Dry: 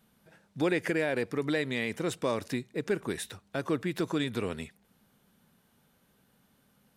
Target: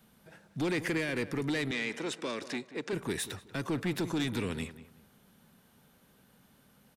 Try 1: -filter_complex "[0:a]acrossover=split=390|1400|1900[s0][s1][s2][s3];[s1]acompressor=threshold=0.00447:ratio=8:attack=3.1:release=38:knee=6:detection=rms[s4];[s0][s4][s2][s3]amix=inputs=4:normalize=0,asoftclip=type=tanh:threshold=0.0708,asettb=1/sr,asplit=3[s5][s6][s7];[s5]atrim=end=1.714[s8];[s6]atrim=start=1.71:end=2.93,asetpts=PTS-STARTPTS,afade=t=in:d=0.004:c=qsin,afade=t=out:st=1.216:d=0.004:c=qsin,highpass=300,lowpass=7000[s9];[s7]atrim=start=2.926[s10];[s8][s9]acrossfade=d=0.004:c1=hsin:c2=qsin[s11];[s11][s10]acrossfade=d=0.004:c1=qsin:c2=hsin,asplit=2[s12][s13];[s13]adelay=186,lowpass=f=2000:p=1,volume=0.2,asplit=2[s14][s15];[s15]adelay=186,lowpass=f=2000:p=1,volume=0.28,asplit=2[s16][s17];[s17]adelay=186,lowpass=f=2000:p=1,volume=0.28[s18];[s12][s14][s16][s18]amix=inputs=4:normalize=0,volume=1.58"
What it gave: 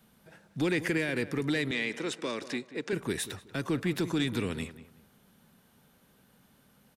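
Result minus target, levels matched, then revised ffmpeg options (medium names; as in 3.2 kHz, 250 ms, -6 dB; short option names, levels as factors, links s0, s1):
saturation: distortion -9 dB
-filter_complex "[0:a]acrossover=split=390|1400|1900[s0][s1][s2][s3];[s1]acompressor=threshold=0.00447:ratio=8:attack=3.1:release=38:knee=6:detection=rms[s4];[s0][s4][s2][s3]amix=inputs=4:normalize=0,asoftclip=type=tanh:threshold=0.0316,asettb=1/sr,asplit=3[s5][s6][s7];[s5]atrim=end=1.714[s8];[s6]atrim=start=1.71:end=2.93,asetpts=PTS-STARTPTS,afade=t=in:d=0.004:c=qsin,afade=t=out:st=1.216:d=0.004:c=qsin,highpass=300,lowpass=7000[s9];[s7]atrim=start=2.926[s10];[s8][s9]acrossfade=d=0.004:c1=hsin:c2=qsin[s11];[s11][s10]acrossfade=d=0.004:c1=qsin:c2=hsin,asplit=2[s12][s13];[s13]adelay=186,lowpass=f=2000:p=1,volume=0.2,asplit=2[s14][s15];[s15]adelay=186,lowpass=f=2000:p=1,volume=0.28,asplit=2[s16][s17];[s17]adelay=186,lowpass=f=2000:p=1,volume=0.28[s18];[s12][s14][s16][s18]amix=inputs=4:normalize=0,volume=1.58"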